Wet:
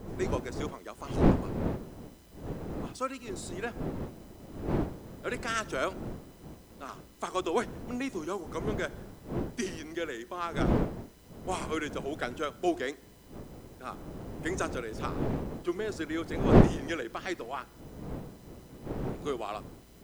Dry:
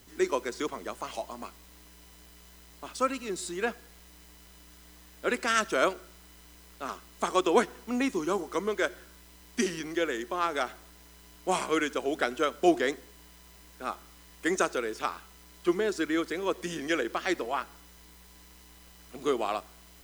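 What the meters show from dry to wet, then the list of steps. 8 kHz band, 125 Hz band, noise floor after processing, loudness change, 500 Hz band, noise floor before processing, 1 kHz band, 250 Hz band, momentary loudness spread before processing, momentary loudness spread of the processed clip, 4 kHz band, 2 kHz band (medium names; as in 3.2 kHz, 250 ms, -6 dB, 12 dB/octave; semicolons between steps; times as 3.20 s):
-6.0 dB, +15.5 dB, -54 dBFS, -2.5 dB, -3.0 dB, -54 dBFS, -4.5 dB, +1.0 dB, 14 LU, 18 LU, -6.0 dB, -5.5 dB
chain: wind noise 340 Hz -28 dBFS; trim -6 dB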